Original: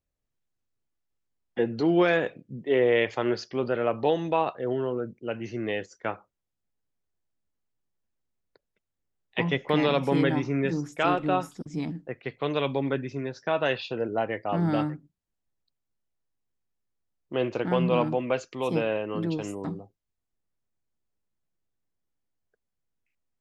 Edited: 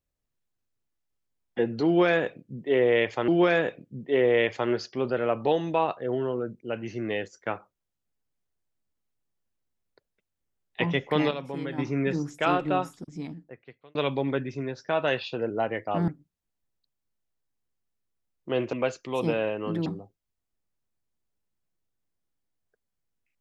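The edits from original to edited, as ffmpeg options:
-filter_complex "[0:a]asplit=8[a][b][c][d][e][f][g][h];[a]atrim=end=3.282[i];[b]atrim=start=1.858:end=9.89,asetpts=PTS-STARTPTS,afade=t=out:st=7.712:d=0.32:c=log:silence=0.298538[j];[c]atrim=start=9.89:end=10.36,asetpts=PTS-STARTPTS,volume=-10.5dB[k];[d]atrim=start=10.36:end=12.53,asetpts=PTS-STARTPTS,afade=t=in:d=0.32:c=log:silence=0.298538,afade=t=out:st=0.87:d=1.3[l];[e]atrim=start=12.53:end=14.662,asetpts=PTS-STARTPTS,afade=t=in:d=0.004:c=hsin[m];[f]atrim=start=14.918:end=17.572[n];[g]atrim=start=18.208:end=19.342[o];[h]atrim=start=19.658[p];[j][k][l][m]concat=n=4:v=0:a=1[q];[i][q]acrossfade=d=0.004:c1=hsin:c2=hsin[r];[r][n]acrossfade=d=0.004:c1=hsin:c2=hsin[s];[s][o]acrossfade=d=0.004:c1=hsin:c2=hsin[t];[t][p]acrossfade=d=0.004:c1=hsin:c2=hsin"

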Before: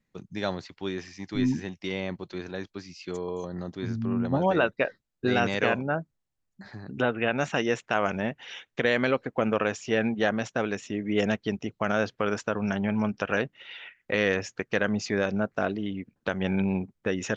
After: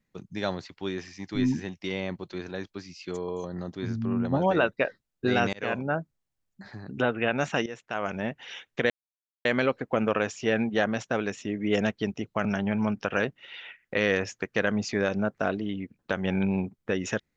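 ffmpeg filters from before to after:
-filter_complex "[0:a]asplit=5[a][b][c][d][e];[a]atrim=end=5.53,asetpts=PTS-STARTPTS,afade=t=out:st=5.526:d=0.004:c=hsin[f];[b]atrim=start=5.53:end=7.66,asetpts=PTS-STARTPTS,afade=t=in:d=0.41:c=qsin,afade=t=out:st=2.126:d=0.004:c=hsin:silence=0.16788[g];[c]atrim=start=7.66:end=8.9,asetpts=PTS-STARTPTS,afade=t=in:d=0.74:silence=0.16788,afade=t=out:st=1.236:d=0.004:c=hsin,apad=pad_dur=0.55[h];[d]atrim=start=8.9:end=11.902,asetpts=PTS-STARTPTS,afade=t=in:d=0.004:c=hsin[i];[e]atrim=start=12.618[j];[f][g][h][i]concat=n=4:v=0:a=1[k];[k][j]acrossfade=d=0.004:c1=hsin:c2=hsin"

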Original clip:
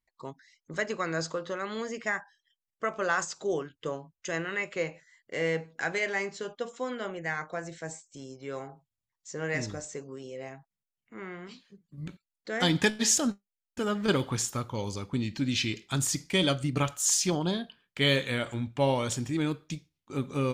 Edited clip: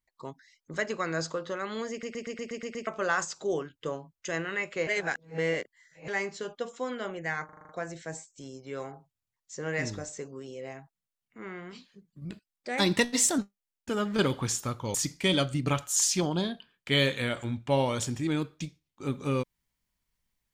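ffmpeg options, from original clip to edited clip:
-filter_complex "[0:a]asplit=20[a][b][c][d][e][f][g][h][i][j][k][l][m][n][o][p][q][r][s][t];[a]atrim=end=2.032[u];[b]atrim=start=1.908:end=2.032[v];[c]atrim=start=1.908:end=2.032[w];[d]atrim=start=1.908:end=2.032[x];[e]atrim=start=1.908:end=2.032[y];[f]atrim=start=1.908:end=2.032[z];[g]atrim=start=1.908:end=2.032[aa];[h]atrim=start=1.908:end=2.032[ab];[i]atrim=start=2.868:end=4.872[ac];[j]atrim=start=4.868:end=6.082,asetpts=PTS-STARTPTS,areverse[ad];[k]atrim=start=6.078:end=7.492[ae];[l]atrim=start=7.448:end=7.492[af];[m]atrim=start=7.448:end=7.492[ag];[n]atrim=start=7.448:end=7.492[ah];[o]atrim=start=7.448:end=7.492[ai];[p]atrim=start=7.448:end=7.492[aj];[q]atrim=start=7.448:end=12.014[ak];[r]atrim=start=12.01:end=13.28,asetpts=PTS-STARTPTS,asetrate=49392,aresample=44100,atrim=end_sample=50006,asetpts=PTS-STARTPTS[al];[s]atrim=start=13.276:end=14.842[am];[t]atrim=start=16.038[an];[u][v]acrossfade=d=0.004:c1=hsin:c2=hsin[ao];[ao][w]acrossfade=d=0.004:c1=hsin:c2=hsin[ap];[ap][x]acrossfade=d=0.004:c1=hsin:c2=hsin[aq];[aq][y]acrossfade=d=0.004:c1=hsin:c2=hsin[ar];[ar][z]acrossfade=d=0.004:c1=hsin:c2=hsin[as];[as][aa]acrossfade=d=0.004:c1=hsin:c2=hsin[at];[at][ab]acrossfade=d=0.004:c1=hsin:c2=hsin[au];[au][ac]acrossfade=d=0.004:c1=hsin:c2=hsin[av];[av][ad]acrossfade=d=0.004:c1=hsin:c2=hsin[aw];[aw][ae]acrossfade=d=0.004:c1=hsin:c2=hsin[ax];[ax][af]acrossfade=d=0.004:c1=hsin:c2=hsin[ay];[ay][ag]acrossfade=d=0.004:c1=hsin:c2=hsin[az];[az][ah]acrossfade=d=0.004:c1=hsin:c2=hsin[ba];[ba][ai]acrossfade=d=0.004:c1=hsin:c2=hsin[bb];[bb][aj]acrossfade=d=0.004:c1=hsin:c2=hsin[bc];[bc][ak]acrossfade=d=0.004:c1=hsin:c2=hsin[bd];[bd][al]acrossfade=d=0.004:c1=hsin:c2=hsin[be];[be][am]acrossfade=d=0.004:c1=hsin:c2=hsin[bf];[bf][an]acrossfade=d=0.004:c1=hsin:c2=hsin"

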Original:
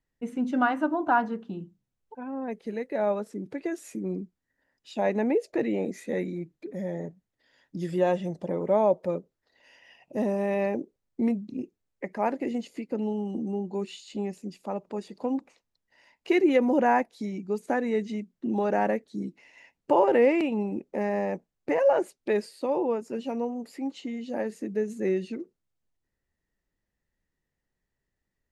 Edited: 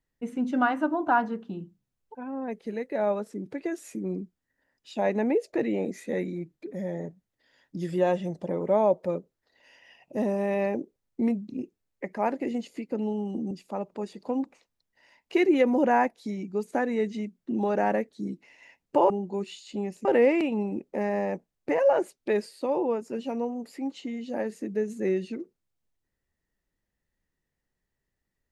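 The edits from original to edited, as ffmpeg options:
-filter_complex "[0:a]asplit=4[a][b][c][d];[a]atrim=end=13.512[e];[b]atrim=start=14.458:end=20.052[f];[c]atrim=start=13.508:end=14.462[g];[d]atrim=start=20.048[h];[e][f]acrossfade=d=0.004:c1=hsin:c2=hsin[i];[i][g]acrossfade=d=0.004:c1=hsin:c2=hsin[j];[j][h]acrossfade=d=0.004:c1=hsin:c2=hsin"

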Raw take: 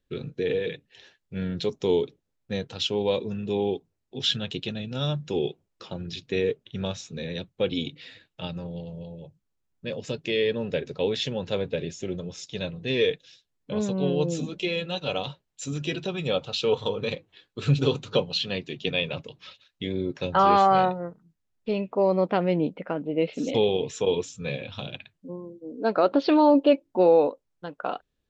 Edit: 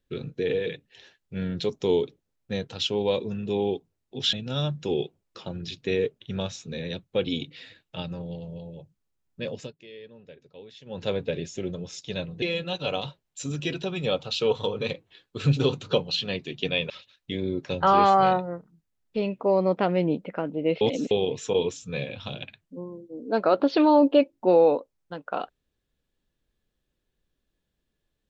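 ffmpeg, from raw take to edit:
-filter_complex "[0:a]asplit=8[a][b][c][d][e][f][g][h];[a]atrim=end=4.332[i];[b]atrim=start=4.778:end=10.18,asetpts=PTS-STARTPTS,afade=t=out:st=5.222:d=0.18:silence=0.1[j];[c]atrim=start=10.18:end=11.3,asetpts=PTS-STARTPTS,volume=-20dB[k];[d]atrim=start=11.3:end=12.872,asetpts=PTS-STARTPTS,afade=t=in:d=0.18:silence=0.1[l];[e]atrim=start=14.638:end=19.122[m];[f]atrim=start=19.418:end=23.332[n];[g]atrim=start=23.328:end=23.632,asetpts=PTS-STARTPTS,areverse[o];[h]atrim=start=23.628[p];[j][k][l]concat=n=3:v=0:a=1[q];[i][q]acrossfade=d=0.004:c1=hsin:c2=hsin[r];[r][m]acrossfade=d=0.004:c1=hsin:c2=hsin[s];[s][n]acrossfade=d=0.004:c1=hsin:c2=hsin[t];[t][o]acrossfade=d=0.004:c1=hsin:c2=hsin[u];[u][p]acrossfade=d=0.004:c1=hsin:c2=hsin"

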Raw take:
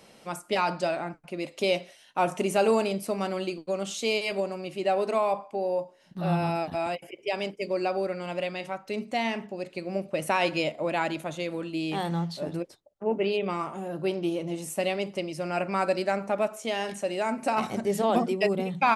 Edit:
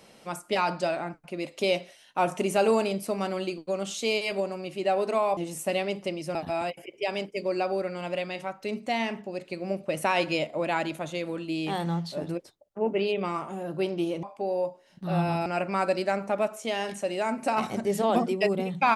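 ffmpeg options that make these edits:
-filter_complex "[0:a]asplit=5[a][b][c][d][e];[a]atrim=end=5.372[f];[b]atrim=start=14.478:end=15.462[g];[c]atrim=start=6.598:end=14.482[h];[d]atrim=start=5.368:end=6.602[i];[e]atrim=start=15.458[j];[f][g]acrossfade=d=0.004:c1=hsin:c2=hsin[k];[k][h]acrossfade=d=0.004:c1=hsin:c2=hsin[l];[l][i]acrossfade=d=0.004:c1=hsin:c2=hsin[m];[m][j]acrossfade=d=0.004:c1=hsin:c2=hsin"

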